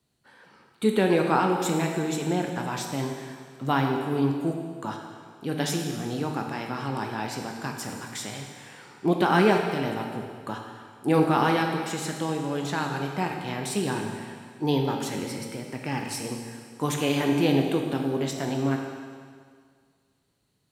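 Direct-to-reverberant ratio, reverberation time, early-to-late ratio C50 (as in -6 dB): 2.0 dB, 1.9 s, 4.0 dB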